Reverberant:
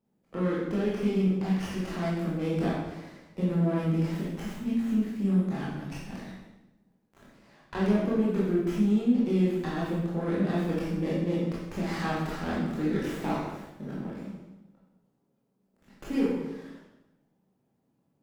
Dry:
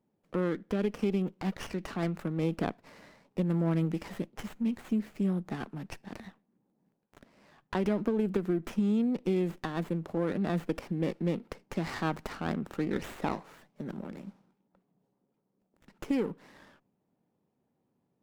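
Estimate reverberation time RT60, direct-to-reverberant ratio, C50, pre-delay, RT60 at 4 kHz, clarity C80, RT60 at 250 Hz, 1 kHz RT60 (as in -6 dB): 1.0 s, -7.0 dB, -0.5 dB, 17 ms, 0.90 s, 3.0 dB, 1.2 s, 0.90 s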